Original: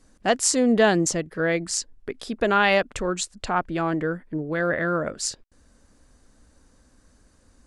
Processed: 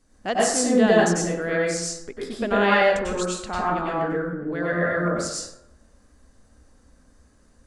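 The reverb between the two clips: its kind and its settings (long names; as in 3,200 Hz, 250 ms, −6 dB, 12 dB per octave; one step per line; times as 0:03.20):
dense smooth reverb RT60 0.82 s, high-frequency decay 0.5×, pre-delay 85 ms, DRR −5.5 dB
level −6 dB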